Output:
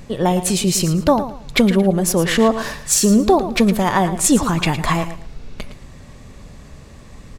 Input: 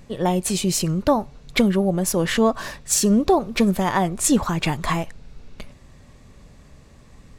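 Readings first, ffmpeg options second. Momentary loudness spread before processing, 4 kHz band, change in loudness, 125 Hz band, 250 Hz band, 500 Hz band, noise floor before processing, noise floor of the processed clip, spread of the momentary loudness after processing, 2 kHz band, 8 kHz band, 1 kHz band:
7 LU, +4.5 dB, +4.0 dB, +4.5 dB, +4.0 dB, +4.0 dB, −49 dBFS, −41 dBFS, 7 LU, +4.5 dB, +4.5 dB, +4.0 dB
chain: -filter_complex "[0:a]asplit=2[link_01][link_02];[link_02]acompressor=threshold=-32dB:ratio=6,volume=-1.5dB[link_03];[link_01][link_03]amix=inputs=2:normalize=0,aecho=1:1:112|224|336:0.251|0.0653|0.017,volume=2.5dB"

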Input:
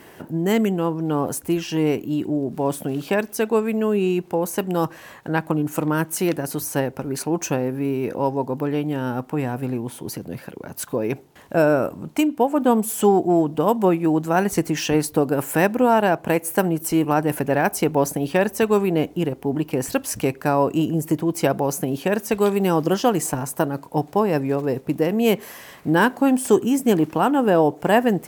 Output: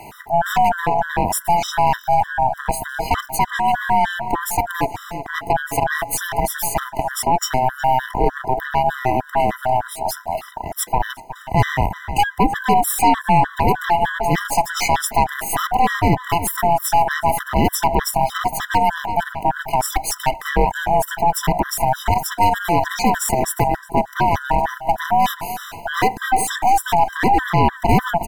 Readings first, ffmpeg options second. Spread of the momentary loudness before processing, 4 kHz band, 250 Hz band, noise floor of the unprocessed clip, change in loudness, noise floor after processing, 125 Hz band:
8 LU, +5.5 dB, −6.0 dB, −46 dBFS, +2.0 dB, −39 dBFS, +1.5 dB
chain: -filter_complex "[0:a]afftfilt=real='real(if(lt(b,1008),b+24*(1-2*mod(floor(b/24),2)),b),0)':imag='imag(if(lt(b,1008),b+24*(1-2*mod(floor(b/24),2)),b),0)':win_size=2048:overlap=0.75,bandreject=frequency=1100:width=6.3,aeval=exprs='0.596*(cos(1*acos(clip(val(0)/0.596,-1,1)))-cos(1*PI/2))+0.0531*(cos(2*acos(clip(val(0)/0.596,-1,1)))-cos(2*PI/2))+0.0188*(cos(4*acos(clip(val(0)/0.596,-1,1)))-cos(4*PI/2))+0.0422*(cos(5*acos(clip(val(0)/0.596,-1,1)))-cos(5*PI/2))+0.0668*(cos(8*acos(clip(val(0)/0.596,-1,1)))-cos(8*PI/2))':channel_layout=same,asplit=2[link_01][link_02];[link_02]adelay=365,lowpass=frequency=2700:poles=1,volume=-14.5dB,asplit=2[link_03][link_04];[link_04]adelay=365,lowpass=frequency=2700:poles=1,volume=0.34,asplit=2[link_05][link_06];[link_06]adelay=365,lowpass=frequency=2700:poles=1,volume=0.34[link_07];[link_03][link_05][link_07]amix=inputs=3:normalize=0[link_08];[link_01][link_08]amix=inputs=2:normalize=0,alimiter=level_in=10.5dB:limit=-1dB:release=50:level=0:latency=1,afftfilt=real='re*gt(sin(2*PI*3.3*pts/sr)*(1-2*mod(floor(b*sr/1024/1000),2)),0)':imag='im*gt(sin(2*PI*3.3*pts/sr)*(1-2*mod(floor(b*sr/1024/1000),2)),0)':win_size=1024:overlap=0.75,volume=-4dB"

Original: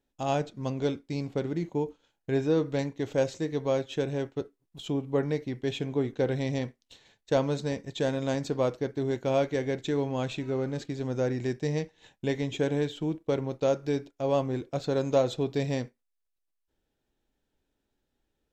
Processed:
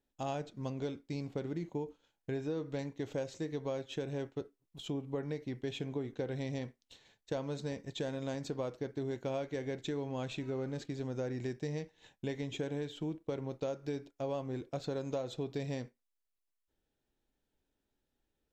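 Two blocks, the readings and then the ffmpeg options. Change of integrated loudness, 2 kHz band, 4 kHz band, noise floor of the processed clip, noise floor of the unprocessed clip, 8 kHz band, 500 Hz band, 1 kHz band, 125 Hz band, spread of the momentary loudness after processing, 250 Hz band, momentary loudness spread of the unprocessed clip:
−9.5 dB, −9.0 dB, −7.5 dB, −85 dBFS, −80 dBFS, −8.0 dB, −10.0 dB, −10.0 dB, −8.0 dB, 4 LU, −8.5 dB, 7 LU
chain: -af "acompressor=threshold=-29dB:ratio=6,volume=-4.5dB"

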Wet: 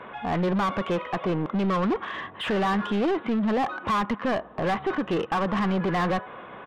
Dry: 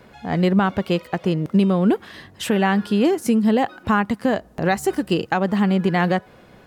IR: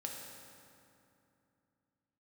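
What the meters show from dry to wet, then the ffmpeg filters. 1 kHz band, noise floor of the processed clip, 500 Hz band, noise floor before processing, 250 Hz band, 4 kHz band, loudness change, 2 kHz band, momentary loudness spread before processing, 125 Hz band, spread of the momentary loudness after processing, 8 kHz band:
−2.5 dB, −44 dBFS, −5.0 dB, −49 dBFS, −7.5 dB, −4.5 dB, −6.0 dB, −5.0 dB, 6 LU, −7.5 dB, 4 LU, below −10 dB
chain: -filter_complex "[0:a]equalizer=frequency=1100:width_type=o:width=0.35:gain=10,aresample=8000,asoftclip=type=hard:threshold=-14.5dB,aresample=44100,asplit=2[link_01][link_02];[link_02]highpass=frequency=720:poles=1,volume=23dB,asoftclip=type=tanh:threshold=-11.5dB[link_03];[link_01][link_03]amix=inputs=2:normalize=0,lowpass=frequency=1700:poles=1,volume=-6dB,volume=-6.5dB"

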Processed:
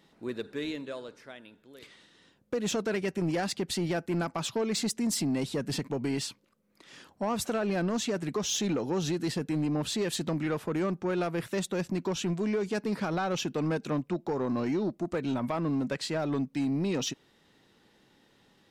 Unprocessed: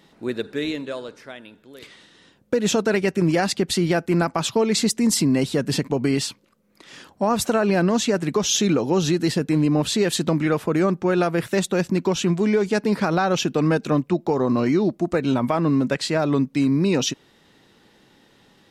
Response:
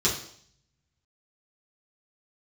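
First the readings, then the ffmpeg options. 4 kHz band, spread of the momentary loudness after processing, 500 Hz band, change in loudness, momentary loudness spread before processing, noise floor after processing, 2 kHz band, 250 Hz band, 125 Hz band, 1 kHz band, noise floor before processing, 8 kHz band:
−9.0 dB, 6 LU, −10.0 dB, −10.0 dB, 7 LU, −65 dBFS, −10.0 dB, −10.0 dB, −10.0 dB, −10.0 dB, −57 dBFS, −9.0 dB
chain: -af "asoftclip=type=tanh:threshold=-14.5dB,volume=-8dB"

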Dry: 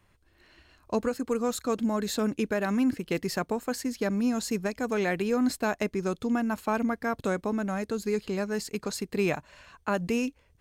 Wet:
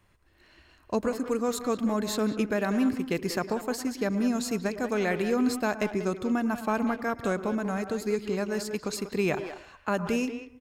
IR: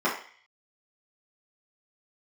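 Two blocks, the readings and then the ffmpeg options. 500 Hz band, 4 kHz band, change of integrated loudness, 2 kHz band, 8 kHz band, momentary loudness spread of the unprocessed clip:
+0.5 dB, +0.5 dB, +0.5 dB, +0.5 dB, 0.0 dB, 5 LU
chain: -filter_complex "[0:a]asplit=2[link_01][link_02];[link_02]adelay=190,highpass=300,lowpass=3400,asoftclip=type=hard:threshold=-24.5dB,volume=-9dB[link_03];[link_01][link_03]amix=inputs=2:normalize=0,asplit=2[link_04][link_05];[1:a]atrim=start_sample=2205,adelay=102[link_06];[link_05][link_06]afir=irnorm=-1:irlink=0,volume=-28dB[link_07];[link_04][link_07]amix=inputs=2:normalize=0"

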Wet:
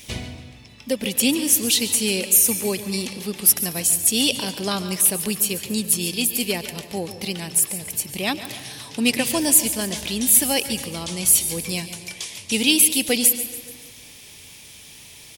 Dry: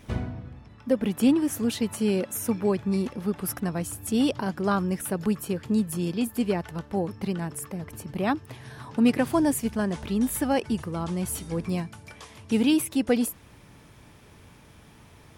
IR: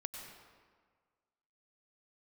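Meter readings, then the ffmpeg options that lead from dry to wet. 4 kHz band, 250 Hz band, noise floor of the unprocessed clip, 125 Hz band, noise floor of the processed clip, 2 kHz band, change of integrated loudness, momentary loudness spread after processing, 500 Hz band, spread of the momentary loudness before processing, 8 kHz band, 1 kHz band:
+15.5 dB, −1.5 dB, −52 dBFS, −2.0 dB, −44 dBFS, +9.0 dB, +8.0 dB, 15 LU, 0.0 dB, 13 LU, +18.5 dB, −1.0 dB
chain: -filter_complex "[0:a]aecho=1:1:142|284|426|568:0.2|0.0938|0.0441|0.0207,asplit=2[link_01][link_02];[1:a]atrim=start_sample=2205,asetrate=39249,aresample=44100[link_03];[link_02][link_03]afir=irnorm=-1:irlink=0,volume=-6.5dB[link_04];[link_01][link_04]amix=inputs=2:normalize=0,aexciter=amount=5.3:drive=8.4:freq=2100,equalizer=frequency=520:width_type=o:width=1.6:gain=3,volume=-5.5dB"

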